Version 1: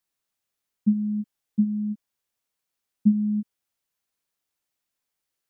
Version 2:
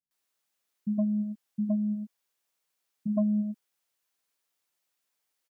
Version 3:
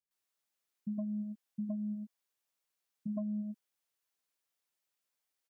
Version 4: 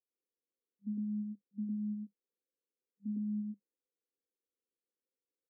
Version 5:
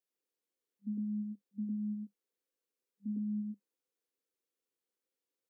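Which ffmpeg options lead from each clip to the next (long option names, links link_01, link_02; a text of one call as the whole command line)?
ffmpeg -i in.wav -filter_complex "[0:a]lowshelf=frequency=280:gain=-3.5,acrossover=split=120[link_01][link_02];[link_02]aeval=exprs='0.237*sin(PI/2*2*val(0)/0.237)':channel_layout=same[link_03];[link_01][link_03]amix=inputs=2:normalize=0,acrossover=split=220[link_04][link_05];[link_05]adelay=110[link_06];[link_04][link_06]amix=inputs=2:normalize=0,volume=-7.5dB" out.wav
ffmpeg -i in.wav -af "acompressor=threshold=-28dB:ratio=4,volume=-6dB" out.wav
ffmpeg -i in.wav -af "afftfilt=real='re*between(b*sr/4096,200,540)':imag='im*between(b*sr/4096,200,540)':win_size=4096:overlap=0.75,aemphasis=mode=production:type=riaa,volume=8dB" out.wav
ffmpeg -i in.wav -af "highpass=190,volume=2.5dB" out.wav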